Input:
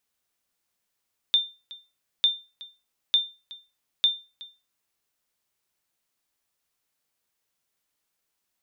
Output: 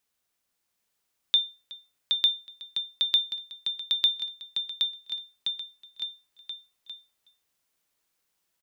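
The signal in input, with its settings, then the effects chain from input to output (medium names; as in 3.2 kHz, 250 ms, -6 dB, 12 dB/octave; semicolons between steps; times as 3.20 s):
sonar ping 3.59 kHz, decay 0.29 s, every 0.90 s, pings 4, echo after 0.37 s, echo -21 dB -12.5 dBFS
bouncing-ball echo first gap 770 ms, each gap 0.85×, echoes 5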